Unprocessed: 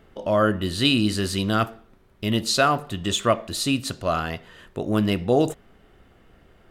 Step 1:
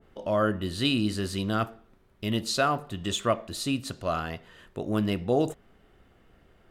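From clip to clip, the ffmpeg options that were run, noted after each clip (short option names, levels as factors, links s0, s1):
-af "adynamicequalizer=threshold=0.0178:dfrequency=1600:dqfactor=0.7:tfrequency=1600:tqfactor=0.7:attack=5:release=100:ratio=0.375:range=2:mode=cutabove:tftype=highshelf,volume=0.562"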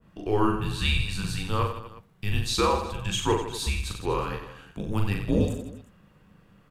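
-af "afreqshift=-210,aecho=1:1:40|92|159.6|247.5|361.7:0.631|0.398|0.251|0.158|0.1"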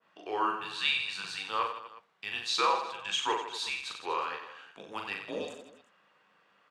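-af "highpass=740,lowpass=5100"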